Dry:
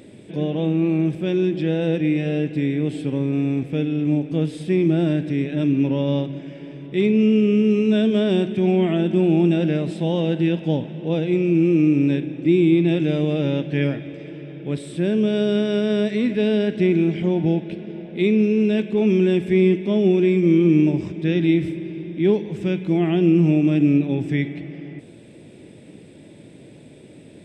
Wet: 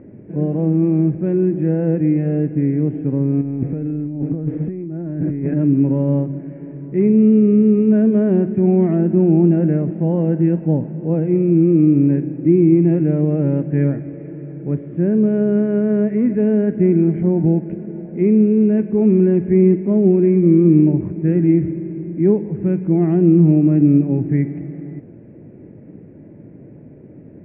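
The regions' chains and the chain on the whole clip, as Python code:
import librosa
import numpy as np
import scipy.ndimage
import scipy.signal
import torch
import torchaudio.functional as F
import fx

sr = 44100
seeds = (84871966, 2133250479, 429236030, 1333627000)

y = fx.chain(x, sr, fx.notch(hz=2800.0, q=19.0),
    fx.over_compress(threshold_db=-27.0, ratio=-1.0),
    fx.lowpass(hz=3700.0, slope=12), at=(3.41, 5.54))
y = scipy.signal.sosfilt(scipy.signal.cheby2(4, 40, 3700.0, 'lowpass', fs=sr, output='sos'), y)
y = fx.low_shelf(y, sr, hz=460.0, db=11.0)
y = y * 10.0 ** (-4.0 / 20.0)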